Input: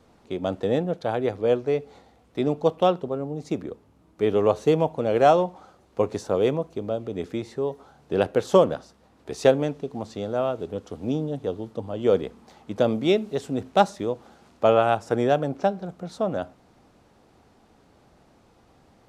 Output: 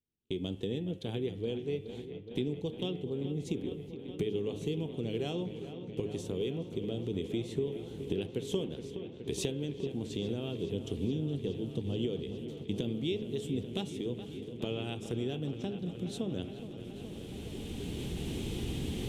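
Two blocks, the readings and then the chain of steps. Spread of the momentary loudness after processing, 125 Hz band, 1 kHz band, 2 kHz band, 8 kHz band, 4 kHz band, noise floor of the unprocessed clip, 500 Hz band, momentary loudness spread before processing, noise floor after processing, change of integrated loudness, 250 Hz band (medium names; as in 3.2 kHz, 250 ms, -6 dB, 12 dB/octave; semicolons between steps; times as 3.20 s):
7 LU, -3.5 dB, -25.5 dB, -13.0 dB, no reading, -4.0 dB, -59 dBFS, -14.0 dB, 13 LU, -46 dBFS, -12.0 dB, -6.5 dB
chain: recorder AGC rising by 12 dB/s; de-hum 105.6 Hz, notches 33; gate -45 dBFS, range -33 dB; FFT filter 130 Hz 0 dB, 260 Hz -4 dB, 410 Hz -3 dB, 600 Hz -21 dB, 870 Hz -19 dB, 1.3 kHz -23 dB, 3.2 kHz +4 dB, 4.7 kHz -10 dB, 8.5 kHz -1 dB; compression 2.5:1, threshold -35 dBFS, peak gain reduction 11.5 dB; on a send: feedback echo behind a low-pass 420 ms, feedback 85%, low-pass 3.4 kHz, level -11.5 dB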